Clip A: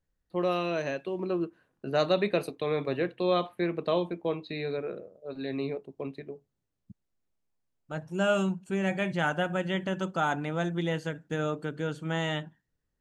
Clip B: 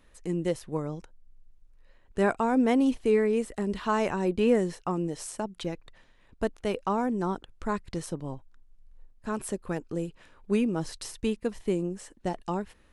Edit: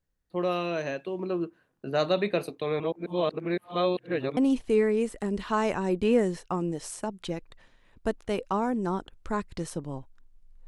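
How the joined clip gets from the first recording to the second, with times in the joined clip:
clip A
2.80–4.37 s: reverse
4.37 s: go over to clip B from 2.73 s

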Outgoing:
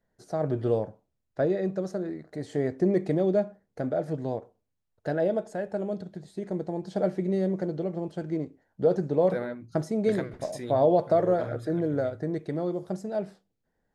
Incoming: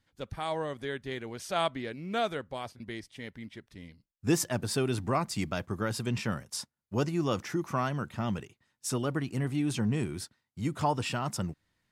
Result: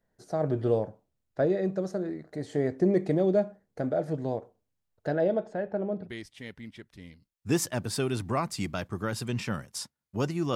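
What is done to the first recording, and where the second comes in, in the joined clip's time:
outgoing
5.06–6.11 s: low-pass 7.2 kHz -> 1.5 kHz
6.06 s: go over to incoming from 2.84 s, crossfade 0.10 s

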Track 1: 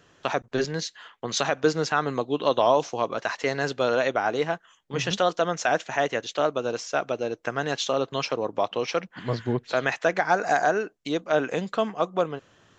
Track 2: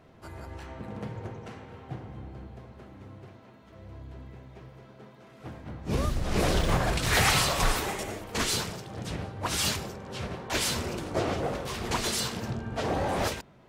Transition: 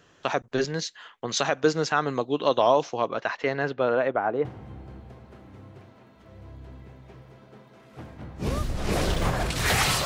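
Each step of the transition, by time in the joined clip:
track 1
2.73–4.45 s: low-pass 6.7 kHz -> 1.1 kHz
4.45 s: go over to track 2 from 1.92 s

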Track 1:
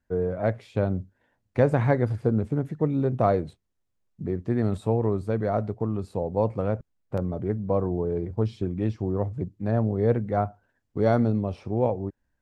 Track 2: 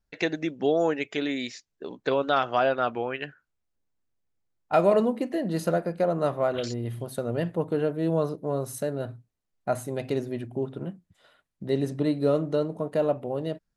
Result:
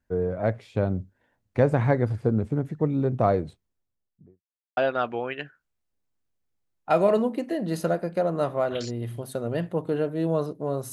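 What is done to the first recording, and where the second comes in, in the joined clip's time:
track 1
3.53–4.42 s: studio fade out
4.42–4.77 s: mute
4.77 s: go over to track 2 from 2.60 s

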